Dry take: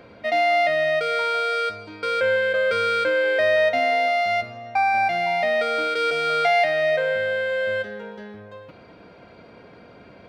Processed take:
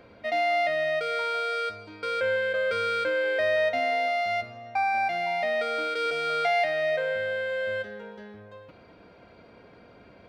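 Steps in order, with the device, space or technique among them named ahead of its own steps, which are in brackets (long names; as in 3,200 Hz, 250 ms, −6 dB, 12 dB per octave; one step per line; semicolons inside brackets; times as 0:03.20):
0:04.84–0:06.06: high-pass filter 140 Hz 12 dB per octave
low shelf boost with a cut just above (low-shelf EQ 69 Hz +6 dB; parametric band 150 Hz −2.5 dB)
level −5.5 dB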